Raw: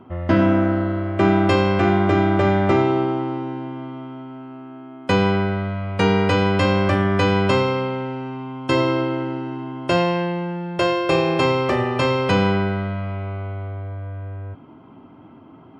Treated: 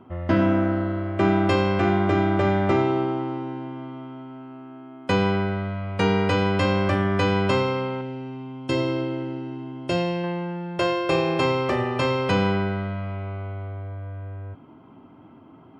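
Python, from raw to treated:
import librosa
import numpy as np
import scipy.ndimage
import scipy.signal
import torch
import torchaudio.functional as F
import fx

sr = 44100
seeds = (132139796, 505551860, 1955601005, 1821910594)

y = fx.peak_eq(x, sr, hz=1200.0, db=-8.0, octaves=1.5, at=(8.01, 10.24))
y = F.gain(torch.from_numpy(y), -3.5).numpy()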